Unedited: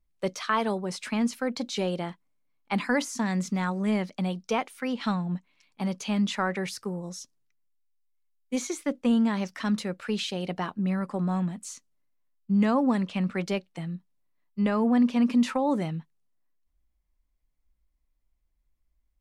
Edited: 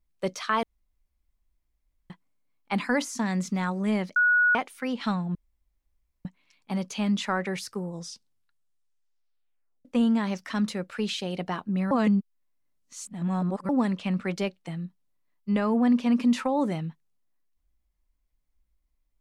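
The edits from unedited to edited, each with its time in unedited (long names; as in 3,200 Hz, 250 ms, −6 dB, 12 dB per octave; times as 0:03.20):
0:00.63–0:02.10: fill with room tone
0:04.16–0:04.55: beep over 1,460 Hz −17.5 dBFS
0:05.35: splice in room tone 0.90 s
0:07.01: tape stop 1.94 s
0:11.01–0:12.79: reverse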